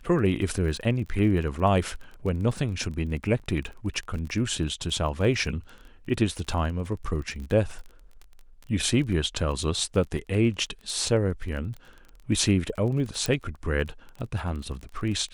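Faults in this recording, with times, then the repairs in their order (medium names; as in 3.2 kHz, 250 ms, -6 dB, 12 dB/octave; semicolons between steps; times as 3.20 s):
crackle 23 per s -34 dBFS
3.39–3.40 s: dropout 8.3 ms
13.26 s: pop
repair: de-click; interpolate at 3.39 s, 8.3 ms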